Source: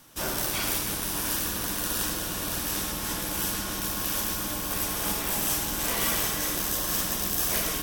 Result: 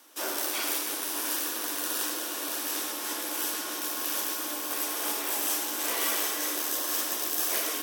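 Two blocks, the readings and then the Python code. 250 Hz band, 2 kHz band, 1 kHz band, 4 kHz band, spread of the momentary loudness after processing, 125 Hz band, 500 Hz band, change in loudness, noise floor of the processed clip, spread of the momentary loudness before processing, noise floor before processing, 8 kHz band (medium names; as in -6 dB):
-5.0 dB, -1.5 dB, -1.5 dB, -1.5 dB, 5 LU, under -30 dB, -1.5 dB, -1.5 dB, -35 dBFS, 4 LU, -32 dBFS, -1.5 dB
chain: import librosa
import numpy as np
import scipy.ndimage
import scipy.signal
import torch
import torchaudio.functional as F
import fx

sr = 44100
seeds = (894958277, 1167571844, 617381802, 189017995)

y = scipy.signal.sosfilt(scipy.signal.butter(8, 270.0, 'highpass', fs=sr, output='sos'), x)
y = y * 10.0 ** (-1.5 / 20.0)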